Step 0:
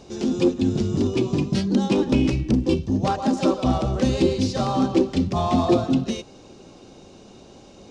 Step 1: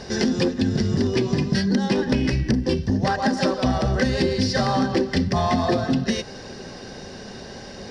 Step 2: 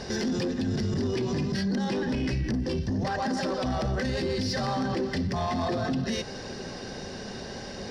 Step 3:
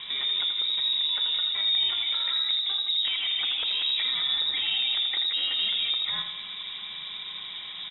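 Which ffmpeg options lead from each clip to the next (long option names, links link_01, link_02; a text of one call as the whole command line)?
ffmpeg -i in.wav -af "superequalizer=6b=0.501:11b=3.98:14b=2:15b=0.562,acompressor=threshold=-27dB:ratio=6,volume=9dB" out.wav
ffmpeg -i in.wav -filter_complex "[0:a]asplit=2[link_01][link_02];[link_02]asoftclip=type=tanh:threshold=-23dB,volume=-3dB[link_03];[link_01][link_03]amix=inputs=2:normalize=0,alimiter=limit=-17dB:level=0:latency=1:release=15,volume=-5dB" out.wav
ffmpeg -i in.wav -filter_complex "[0:a]asplit=2[link_01][link_02];[link_02]aecho=0:1:82|164|246|328|410:0.422|0.177|0.0744|0.0312|0.0131[link_03];[link_01][link_03]amix=inputs=2:normalize=0,lowpass=frequency=3300:width_type=q:width=0.5098,lowpass=frequency=3300:width_type=q:width=0.6013,lowpass=frequency=3300:width_type=q:width=0.9,lowpass=frequency=3300:width_type=q:width=2.563,afreqshift=-3900" out.wav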